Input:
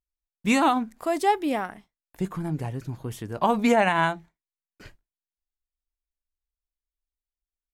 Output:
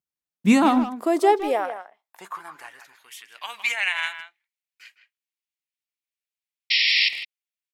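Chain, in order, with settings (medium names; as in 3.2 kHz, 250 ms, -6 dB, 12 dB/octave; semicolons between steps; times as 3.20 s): painted sound noise, 6.70–7.09 s, 1.8–5.6 kHz -24 dBFS; high-pass sweep 150 Hz -> 2.3 kHz, 0.22–3.17 s; speakerphone echo 160 ms, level -10 dB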